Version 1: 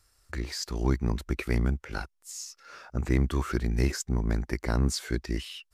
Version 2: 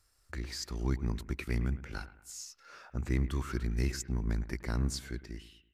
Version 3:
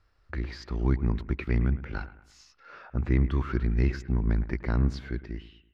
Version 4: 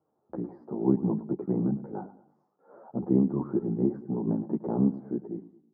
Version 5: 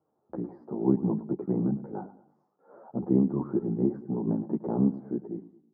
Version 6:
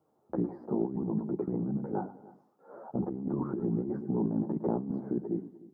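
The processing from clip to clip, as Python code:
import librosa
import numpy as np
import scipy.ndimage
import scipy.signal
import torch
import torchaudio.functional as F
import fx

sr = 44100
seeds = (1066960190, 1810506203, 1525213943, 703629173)

y1 = fx.fade_out_tail(x, sr, length_s=0.95)
y1 = fx.dynamic_eq(y1, sr, hz=630.0, q=0.82, threshold_db=-43.0, ratio=4.0, max_db=-6)
y1 = fx.echo_bbd(y1, sr, ms=109, stages=2048, feedback_pct=41, wet_db=-15.0)
y1 = F.gain(torch.from_numpy(y1), -5.0).numpy()
y2 = fx.air_absorb(y1, sr, metres=310.0)
y2 = F.gain(torch.from_numpy(y2), 7.0).numpy()
y3 = scipy.signal.sosfilt(scipy.signal.ellip(3, 1.0, 50, [160.0, 840.0], 'bandpass', fs=sr, output='sos'), y2)
y3 = fx.ensemble(y3, sr)
y3 = F.gain(torch.from_numpy(y3), 8.5).numpy()
y4 = y3
y5 = fx.over_compress(y4, sr, threshold_db=-31.0, ratio=-1.0)
y5 = y5 + 10.0 ** (-20.5 / 20.0) * np.pad(y5, (int(304 * sr / 1000.0), 0))[:len(y5)]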